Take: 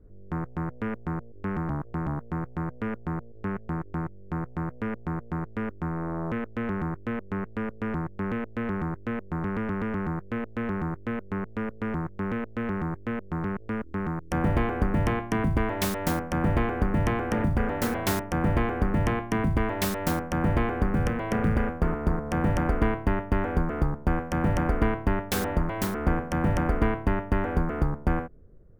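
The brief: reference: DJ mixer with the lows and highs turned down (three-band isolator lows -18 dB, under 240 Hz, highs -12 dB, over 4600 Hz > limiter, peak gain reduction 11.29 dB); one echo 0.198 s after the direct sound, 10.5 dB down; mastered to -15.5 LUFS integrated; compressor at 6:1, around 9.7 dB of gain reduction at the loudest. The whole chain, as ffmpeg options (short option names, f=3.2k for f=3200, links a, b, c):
-filter_complex "[0:a]acompressor=threshold=-30dB:ratio=6,acrossover=split=240 4600:gain=0.126 1 0.251[a][b][c];[a][b][c]amix=inputs=3:normalize=0,aecho=1:1:198:0.299,volume=27dB,alimiter=limit=-5dB:level=0:latency=1"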